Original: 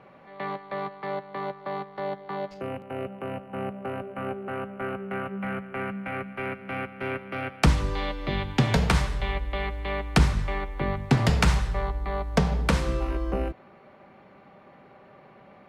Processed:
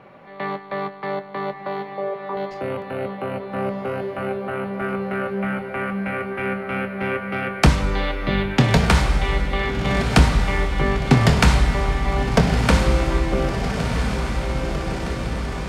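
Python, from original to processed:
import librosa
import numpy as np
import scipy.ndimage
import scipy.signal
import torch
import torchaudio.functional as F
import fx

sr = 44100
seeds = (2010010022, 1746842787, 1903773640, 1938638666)

y = fx.envelope_sharpen(x, sr, power=3.0, at=(1.94, 2.37))
y = fx.doubler(y, sr, ms=25.0, db=-11.0)
y = fx.echo_diffused(y, sr, ms=1367, feedback_pct=68, wet_db=-6.0)
y = y * 10.0 ** (5.5 / 20.0)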